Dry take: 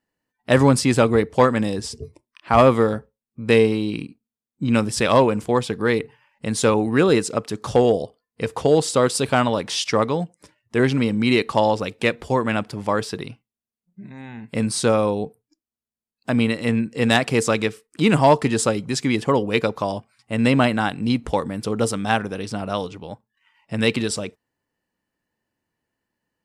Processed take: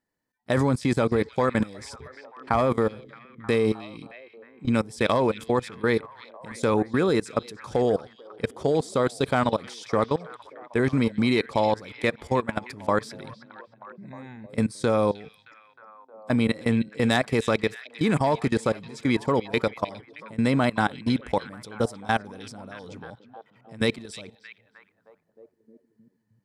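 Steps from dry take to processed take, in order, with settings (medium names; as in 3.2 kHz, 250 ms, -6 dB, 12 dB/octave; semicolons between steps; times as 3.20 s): band-stop 2.8 kHz, Q 5.5; level held to a coarse grid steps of 21 dB; repeats whose band climbs or falls 311 ms, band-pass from 3.4 kHz, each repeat -0.7 oct, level -11 dB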